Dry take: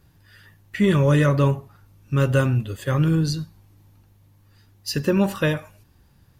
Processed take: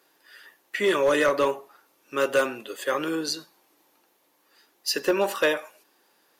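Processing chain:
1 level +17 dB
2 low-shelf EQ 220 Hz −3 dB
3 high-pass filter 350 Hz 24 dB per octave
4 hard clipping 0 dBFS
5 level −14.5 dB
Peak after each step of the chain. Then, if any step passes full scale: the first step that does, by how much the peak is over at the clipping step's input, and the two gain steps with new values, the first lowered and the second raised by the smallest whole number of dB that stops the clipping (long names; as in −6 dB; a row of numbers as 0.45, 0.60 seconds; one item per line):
+9.0, +8.0, +6.5, 0.0, −14.5 dBFS
step 1, 6.5 dB
step 1 +10 dB, step 5 −7.5 dB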